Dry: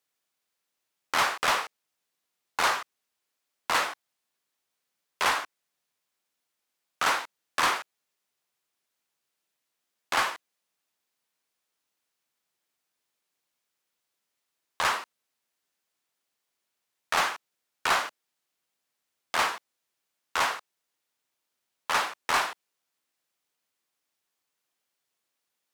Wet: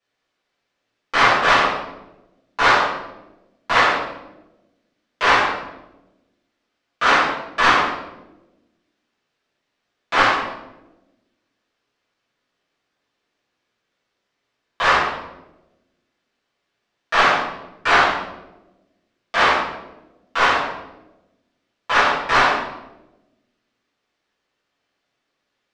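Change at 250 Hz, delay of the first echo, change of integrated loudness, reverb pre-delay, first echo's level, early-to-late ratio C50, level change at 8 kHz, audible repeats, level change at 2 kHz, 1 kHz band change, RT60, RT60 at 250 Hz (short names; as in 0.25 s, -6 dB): +15.5 dB, none, +10.0 dB, 4 ms, none, 2.0 dB, -0.5 dB, none, +11.5 dB, +11.0 dB, 1.0 s, 1.5 s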